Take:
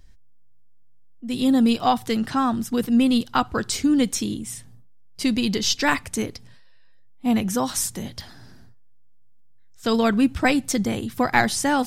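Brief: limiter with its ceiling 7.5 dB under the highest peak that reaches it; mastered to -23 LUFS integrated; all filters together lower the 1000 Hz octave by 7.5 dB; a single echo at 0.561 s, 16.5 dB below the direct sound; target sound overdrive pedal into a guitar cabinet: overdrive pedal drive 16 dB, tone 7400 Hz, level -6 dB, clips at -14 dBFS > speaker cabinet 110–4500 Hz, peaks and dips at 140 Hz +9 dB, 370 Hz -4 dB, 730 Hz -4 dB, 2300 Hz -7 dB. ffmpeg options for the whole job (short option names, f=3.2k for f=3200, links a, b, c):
-filter_complex "[0:a]equalizer=f=1k:t=o:g=-7.5,alimiter=limit=-15.5dB:level=0:latency=1,aecho=1:1:561:0.15,asplit=2[a][b];[b]highpass=f=720:p=1,volume=16dB,asoftclip=type=tanh:threshold=-14dB[c];[a][c]amix=inputs=2:normalize=0,lowpass=f=7.4k:p=1,volume=-6dB,highpass=110,equalizer=f=140:t=q:w=4:g=9,equalizer=f=370:t=q:w=4:g=-4,equalizer=f=730:t=q:w=4:g=-4,equalizer=f=2.3k:t=q:w=4:g=-7,lowpass=f=4.5k:w=0.5412,lowpass=f=4.5k:w=1.3066,volume=2dB"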